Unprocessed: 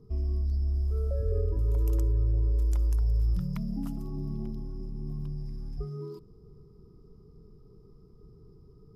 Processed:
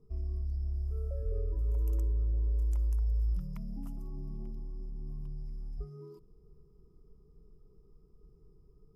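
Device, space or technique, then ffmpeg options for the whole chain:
low shelf boost with a cut just above: -af "equalizer=f=100:t=o:w=0.67:g=-11,equalizer=f=1.6k:t=o:w=0.67:g=-4,equalizer=f=4k:t=o:w=0.67:g=-8,lowshelf=f=91:g=7,equalizer=f=240:t=o:w=1.1:g=-4,volume=-7.5dB"

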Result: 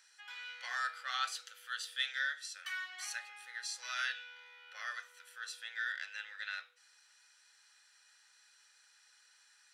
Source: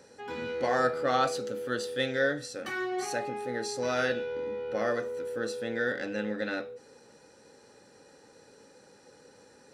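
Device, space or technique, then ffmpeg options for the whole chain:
headphones lying on a table: -af "highpass=f=1.4k:w=0.5412,highpass=f=1.4k:w=1.3066,equalizer=f=3.2k:t=o:w=0.22:g=6,volume=-3dB"

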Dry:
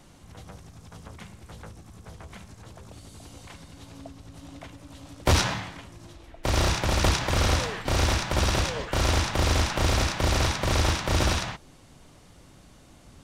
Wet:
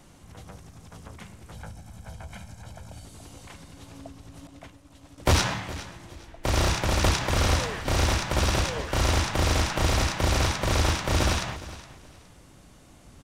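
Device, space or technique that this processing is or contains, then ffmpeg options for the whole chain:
exciter from parts: -filter_complex "[0:a]asettb=1/sr,asplit=3[a][b][c];[a]atrim=end=1.554[d];[b]atrim=start=1.55:end=3.05,asetpts=PTS-STARTPTS,afade=t=in:d=0.004:c=qsin,afade=t=out:st=1.496:d=0.004:c=qsin,aecho=1:1:1.3:0.61,atrim=end_sample=66150[e];[c]atrim=start=3.046[f];[d][e]acrossfade=d=0.004:c1=hsin:c2=qsin[g];[g][f]acrossfade=d=0.004:c1=qsin:c2=hsin,asettb=1/sr,asplit=3[h][i][j];[h]atrim=end=4.474[k];[i]atrim=start=4.47:end=5.18,asetpts=PTS-STARTPTS,afade=t=in:d=0.004:c=qsin,afade=t=out:st=0.706:d=0.004:c=qsin,agate=range=-33dB:threshold=-38dB:ratio=3:detection=peak[l];[j]atrim=start=5.176[m];[k][l]acrossfade=d=0.004:c1=hsin:c2=qsin[n];[n][m]acrossfade=d=0.004:c1=qsin:c2=hsin,asplit=2[o][p];[p]highpass=f=3.7k:w=0.5412,highpass=f=3.7k:w=1.3066,asoftclip=type=tanh:threshold=-33dB,volume=-13dB[q];[o][q]amix=inputs=2:normalize=0,aecho=1:1:415|830:0.15|0.0374"

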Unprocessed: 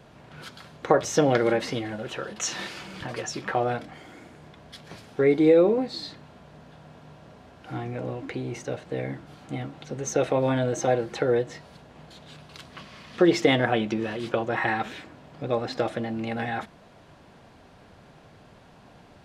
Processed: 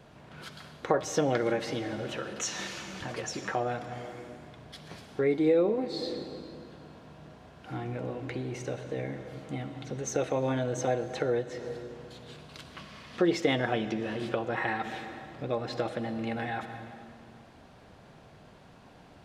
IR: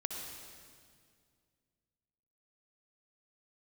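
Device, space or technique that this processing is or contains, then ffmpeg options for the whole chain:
ducked reverb: -filter_complex "[0:a]asplit=3[a][b][c];[1:a]atrim=start_sample=2205[d];[b][d]afir=irnorm=-1:irlink=0[e];[c]apad=whole_len=848560[f];[e][f]sidechaincompress=threshold=-31dB:ratio=8:attack=40:release=332,volume=-1dB[g];[a][g]amix=inputs=2:normalize=0,volume=-7.5dB"

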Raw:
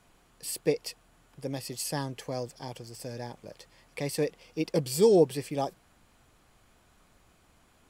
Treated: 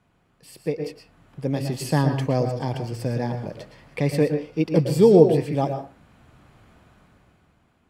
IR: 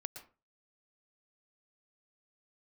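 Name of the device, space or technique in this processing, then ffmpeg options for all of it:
far laptop microphone: -filter_complex "[0:a]bass=f=250:g=10,treble=f=4k:g=-11[a];[1:a]atrim=start_sample=2205[b];[a][b]afir=irnorm=-1:irlink=0,highpass=f=140:p=1,dynaudnorm=f=210:g=11:m=14dB"

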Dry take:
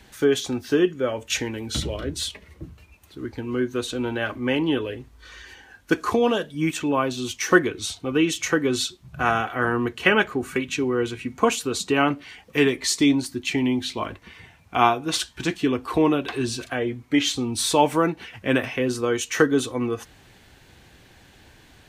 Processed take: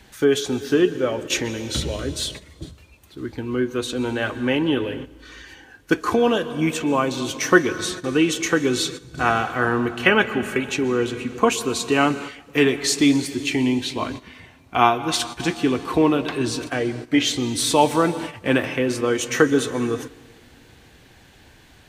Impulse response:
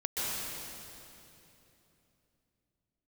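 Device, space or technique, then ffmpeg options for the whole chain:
keyed gated reverb: -filter_complex "[0:a]asplit=3[a][b][c];[1:a]atrim=start_sample=2205[d];[b][d]afir=irnorm=-1:irlink=0[e];[c]apad=whole_len=965255[f];[e][f]sidechaingate=range=-14dB:threshold=-38dB:ratio=16:detection=peak,volume=-18dB[g];[a][g]amix=inputs=2:normalize=0,volume=1dB"

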